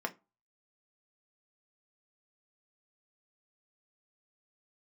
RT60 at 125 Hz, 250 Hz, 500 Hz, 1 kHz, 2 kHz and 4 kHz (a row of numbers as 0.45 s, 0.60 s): 0.30 s, 0.30 s, 0.25 s, 0.25 s, 0.20 s, 0.15 s